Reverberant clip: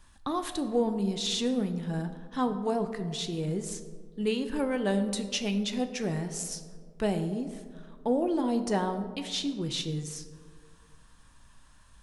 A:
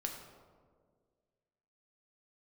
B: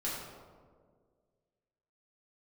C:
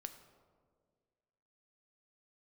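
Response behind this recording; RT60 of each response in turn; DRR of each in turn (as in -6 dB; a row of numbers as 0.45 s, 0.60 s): C; 1.8 s, 1.8 s, 1.8 s; 1.5 dB, -8.5 dB, 7.5 dB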